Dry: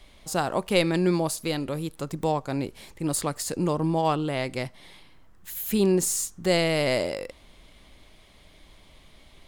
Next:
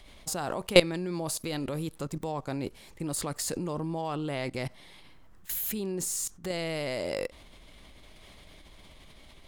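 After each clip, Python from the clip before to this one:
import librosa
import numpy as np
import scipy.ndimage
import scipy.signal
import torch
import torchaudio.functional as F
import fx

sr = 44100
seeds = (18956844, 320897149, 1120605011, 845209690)

y = fx.level_steps(x, sr, step_db=19)
y = F.gain(torch.from_numpy(y), 5.5).numpy()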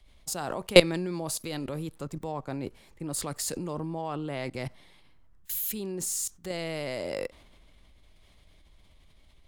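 y = fx.band_widen(x, sr, depth_pct=40)
y = F.gain(torch.from_numpy(y), -1.0).numpy()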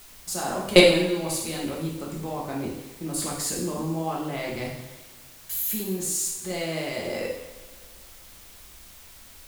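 y = fx.rev_double_slope(x, sr, seeds[0], early_s=0.76, late_s=2.3, knee_db=-18, drr_db=-4.0)
y = fx.quant_dither(y, sr, seeds[1], bits=8, dither='triangular')
y = F.gain(torch.from_numpy(y), -1.0).numpy()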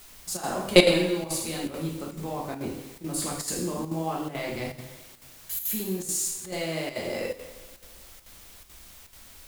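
y = fx.chopper(x, sr, hz=2.3, depth_pct=60, duty_pct=85)
y = F.gain(torch.from_numpy(y), -1.0).numpy()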